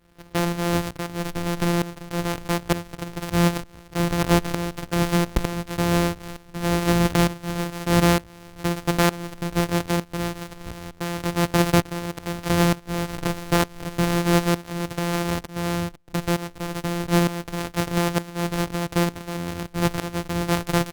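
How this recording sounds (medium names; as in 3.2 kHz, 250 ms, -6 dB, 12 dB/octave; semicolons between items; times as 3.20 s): a buzz of ramps at a fixed pitch in blocks of 256 samples; tremolo saw up 1.1 Hz, depth 85%; Opus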